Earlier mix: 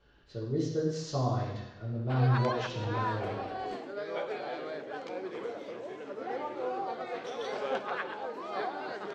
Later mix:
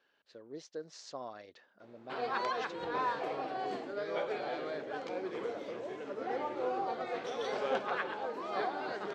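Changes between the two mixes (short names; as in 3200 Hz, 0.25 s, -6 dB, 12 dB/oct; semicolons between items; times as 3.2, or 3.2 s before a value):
speech: add HPF 370 Hz 12 dB/oct; reverb: off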